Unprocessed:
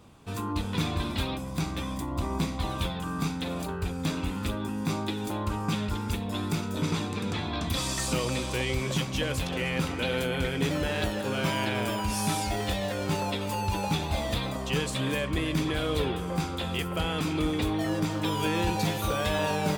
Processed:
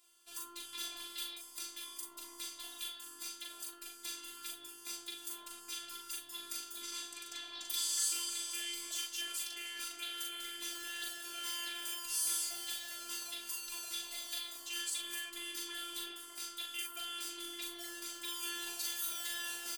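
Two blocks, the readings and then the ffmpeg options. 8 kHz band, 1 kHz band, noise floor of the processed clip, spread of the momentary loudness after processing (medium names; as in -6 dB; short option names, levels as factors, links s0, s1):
+0.5 dB, -19.5 dB, -54 dBFS, 9 LU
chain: -af "aderivative,afftfilt=real='hypot(re,im)*cos(PI*b)':imag='0':win_size=512:overlap=0.75,aecho=1:1:40|50:0.708|0.251,volume=1.19"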